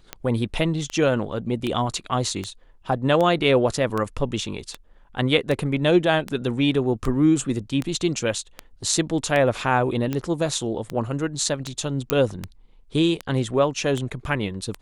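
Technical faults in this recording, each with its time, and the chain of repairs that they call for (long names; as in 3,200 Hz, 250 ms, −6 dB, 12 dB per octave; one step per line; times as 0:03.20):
scratch tick 78 rpm −13 dBFS
0:12.10: click −4 dBFS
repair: click removal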